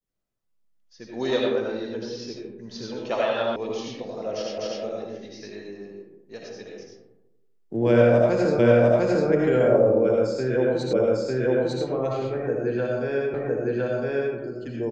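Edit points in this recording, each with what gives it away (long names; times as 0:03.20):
0:03.56: cut off before it has died away
0:04.58: the same again, the last 0.25 s
0:08.59: the same again, the last 0.7 s
0:10.93: the same again, the last 0.9 s
0:13.34: the same again, the last 1.01 s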